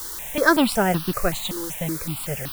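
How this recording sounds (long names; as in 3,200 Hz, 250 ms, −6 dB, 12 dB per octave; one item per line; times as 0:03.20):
a quantiser's noise floor 6 bits, dither triangular
notches that jump at a steady rate 5.3 Hz 660–2,100 Hz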